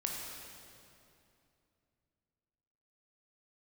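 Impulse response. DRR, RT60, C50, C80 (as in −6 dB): −1.0 dB, 2.7 s, 0.5 dB, 2.0 dB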